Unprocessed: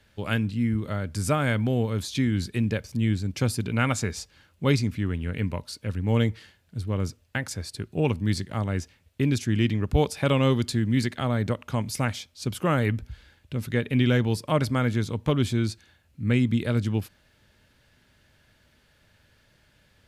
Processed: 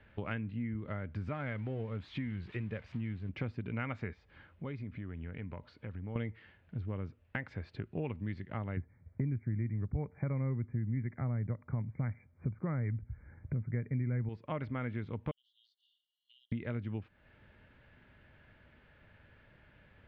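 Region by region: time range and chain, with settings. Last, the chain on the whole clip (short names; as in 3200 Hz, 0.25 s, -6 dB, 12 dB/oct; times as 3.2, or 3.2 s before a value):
1.29–3.29 switching spikes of -24 dBFS + bell 6000 Hz -4 dB 0.37 oct + flange 1.2 Hz, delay 0.9 ms, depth 1.4 ms, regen -64%
4.13–6.16 compressor 2.5:1, threshold -45 dBFS + notch 2700 Hz, Q 14
8.77–14.29 brick-wall FIR low-pass 2400 Hz + bell 120 Hz +12.5 dB 1.8 oct + mismatched tape noise reduction decoder only
15.31–16.52 brick-wall FIR high-pass 2800 Hz + compressor 4:1, threshold -57 dBFS
whole clip: LPF 2600 Hz 24 dB/oct; dynamic EQ 2000 Hz, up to +6 dB, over -51 dBFS, Q 6; compressor 4:1, threshold -38 dBFS; gain +1 dB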